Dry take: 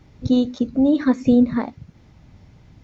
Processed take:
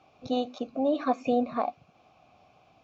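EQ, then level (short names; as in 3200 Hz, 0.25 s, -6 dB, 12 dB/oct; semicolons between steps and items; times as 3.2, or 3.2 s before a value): vowel filter a; high shelf 4000 Hz +12 dB; +9.0 dB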